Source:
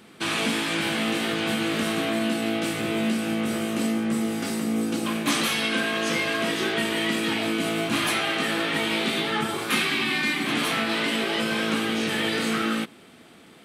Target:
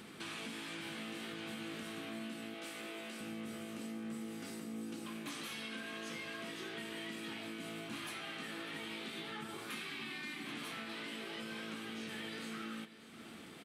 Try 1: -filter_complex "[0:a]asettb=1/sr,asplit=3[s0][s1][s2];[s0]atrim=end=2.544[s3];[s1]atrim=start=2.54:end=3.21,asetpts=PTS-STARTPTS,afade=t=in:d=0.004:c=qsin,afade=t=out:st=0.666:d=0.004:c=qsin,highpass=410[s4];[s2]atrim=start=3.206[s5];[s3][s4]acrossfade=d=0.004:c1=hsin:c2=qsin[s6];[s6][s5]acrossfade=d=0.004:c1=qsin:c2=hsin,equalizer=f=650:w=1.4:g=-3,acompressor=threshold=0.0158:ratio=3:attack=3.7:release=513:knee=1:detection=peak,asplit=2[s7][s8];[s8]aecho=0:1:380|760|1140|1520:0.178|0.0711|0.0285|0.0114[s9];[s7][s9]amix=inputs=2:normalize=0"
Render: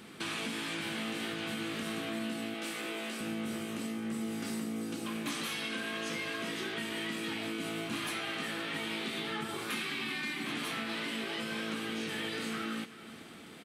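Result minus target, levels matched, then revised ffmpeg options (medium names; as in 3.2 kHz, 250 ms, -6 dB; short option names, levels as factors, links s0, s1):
compression: peak gain reduction -7.5 dB; echo 213 ms early
-filter_complex "[0:a]asettb=1/sr,asplit=3[s0][s1][s2];[s0]atrim=end=2.544[s3];[s1]atrim=start=2.54:end=3.21,asetpts=PTS-STARTPTS,afade=t=in:d=0.004:c=qsin,afade=t=out:st=0.666:d=0.004:c=qsin,highpass=410[s4];[s2]atrim=start=3.206[s5];[s3][s4]acrossfade=d=0.004:c1=hsin:c2=qsin[s6];[s6][s5]acrossfade=d=0.004:c1=qsin:c2=hsin,equalizer=f=650:w=1.4:g=-3,acompressor=threshold=0.00422:ratio=3:attack=3.7:release=513:knee=1:detection=peak,asplit=2[s7][s8];[s8]aecho=0:1:593|1186|1779|2372:0.178|0.0711|0.0285|0.0114[s9];[s7][s9]amix=inputs=2:normalize=0"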